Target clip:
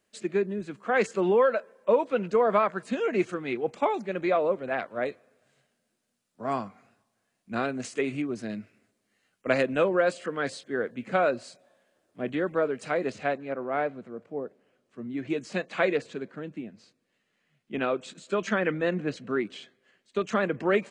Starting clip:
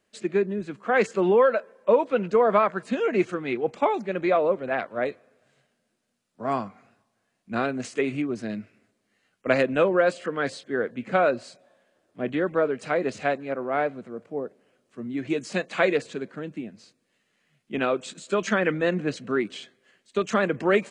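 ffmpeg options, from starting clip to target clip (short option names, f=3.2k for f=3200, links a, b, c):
-af "asetnsamples=n=441:p=0,asendcmd='13.12 highshelf g -8',highshelf=f=7k:g=6,volume=-3dB"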